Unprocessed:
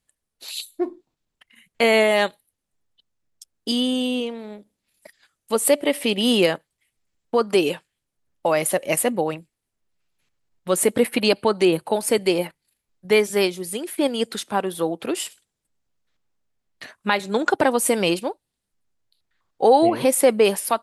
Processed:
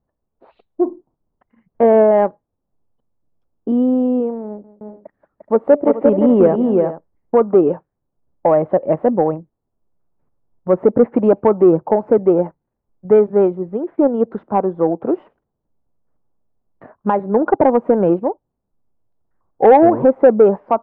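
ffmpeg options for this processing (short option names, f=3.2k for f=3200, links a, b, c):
-filter_complex "[0:a]asettb=1/sr,asplit=3[a][b][c];[a]atrim=end=4.464[d];[b]atrim=start=4.46:end=7.44,asetpts=PTS-STARTPTS,afade=t=in:d=0.004:c=qsin,afade=t=out:st=2.976:d=0.004:c=qsin,aecho=1:1:179|349|424:0.141|0.631|0.2,atrim=end_sample=131418[e];[c]atrim=start=7.436[f];[d][e]acrossfade=d=0.004:c1=hsin:c2=qsin[g];[g][f]acrossfade=d=0.004:c1=qsin:c2=hsin,lowpass=f=1k:w=0.5412,lowpass=f=1k:w=1.3066,acontrast=62,volume=1.5dB"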